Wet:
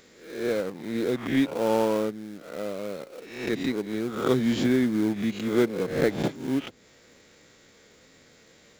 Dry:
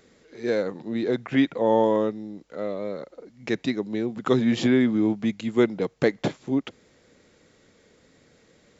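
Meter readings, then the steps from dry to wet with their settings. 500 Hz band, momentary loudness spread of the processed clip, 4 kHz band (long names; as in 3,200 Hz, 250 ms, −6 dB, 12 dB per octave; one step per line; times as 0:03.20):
−2.0 dB, 13 LU, −0.5 dB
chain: peak hold with a rise ahead of every peak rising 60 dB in 0.57 s
in parallel at −8.5 dB: sample-rate reduction 1,900 Hz, jitter 20%
on the sum: one half of a high-frequency compander encoder only
level −5.5 dB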